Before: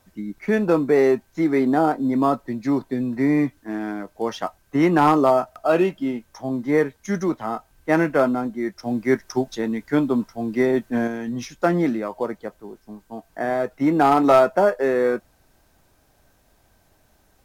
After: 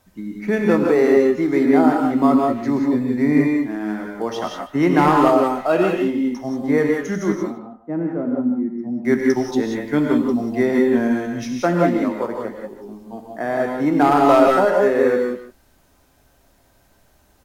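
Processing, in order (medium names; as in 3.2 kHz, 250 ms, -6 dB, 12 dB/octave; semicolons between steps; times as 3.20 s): 7.39–9.05 s: band-pass filter 210 Hz, Q 1.5; speakerphone echo 150 ms, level -12 dB; gated-style reverb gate 210 ms rising, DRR 0.5 dB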